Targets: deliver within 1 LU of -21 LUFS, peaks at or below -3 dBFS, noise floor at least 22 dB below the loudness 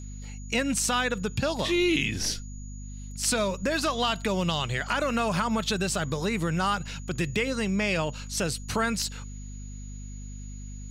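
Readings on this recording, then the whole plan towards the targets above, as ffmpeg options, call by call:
hum 50 Hz; harmonics up to 250 Hz; hum level -36 dBFS; steady tone 6800 Hz; tone level -49 dBFS; loudness -27.5 LUFS; peak -12.0 dBFS; loudness target -21.0 LUFS
-> -af "bandreject=f=50:t=h:w=6,bandreject=f=100:t=h:w=6,bandreject=f=150:t=h:w=6,bandreject=f=200:t=h:w=6,bandreject=f=250:t=h:w=6"
-af "bandreject=f=6.8k:w=30"
-af "volume=6.5dB"

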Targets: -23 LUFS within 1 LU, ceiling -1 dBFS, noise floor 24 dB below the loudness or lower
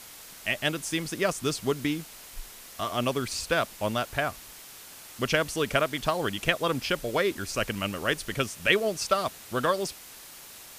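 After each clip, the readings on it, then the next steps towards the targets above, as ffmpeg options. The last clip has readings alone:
noise floor -47 dBFS; noise floor target -53 dBFS; loudness -28.5 LUFS; peak -4.5 dBFS; loudness target -23.0 LUFS
-> -af "afftdn=nr=6:nf=-47"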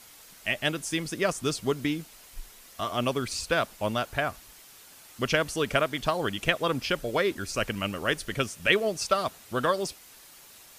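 noise floor -52 dBFS; noise floor target -53 dBFS
-> -af "afftdn=nr=6:nf=-52"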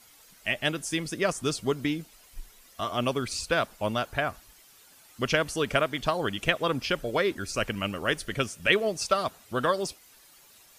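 noise floor -56 dBFS; loudness -28.5 LUFS; peak -4.5 dBFS; loudness target -23.0 LUFS
-> -af "volume=5.5dB,alimiter=limit=-1dB:level=0:latency=1"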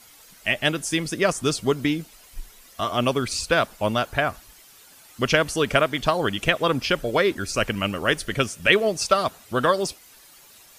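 loudness -23.0 LUFS; peak -1.0 dBFS; noise floor -51 dBFS

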